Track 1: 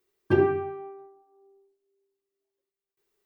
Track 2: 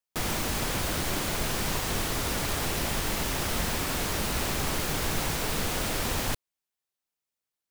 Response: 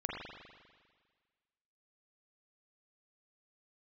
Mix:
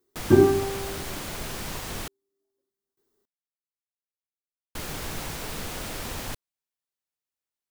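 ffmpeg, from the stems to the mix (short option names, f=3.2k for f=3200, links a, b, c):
-filter_complex "[0:a]equalizer=f=100:t=o:w=0.67:g=5,equalizer=f=250:t=o:w=0.67:g=12,equalizer=f=2.5k:t=o:w=0.67:g=-11,volume=1dB[a];[1:a]volume=-5dB,asplit=3[b][c][d];[b]atrim=end=2.08,asetpts=PTS-STARTPTS,afade=t=out:st=2.076:d=0.004:c=hsin[e];[c]atrim=start=2.08:end=4.75,asetpts=PTS-STARTPTS,volume=0[f];[d]atrim=start=4.75,asetpts=PTS-STARTPTS,afade=t=in:d=0.004:c=hsin[g];[e][f][g]concat=n=3:v=0:a=1[h];[a][h]amix=inputs=2:normalize=0"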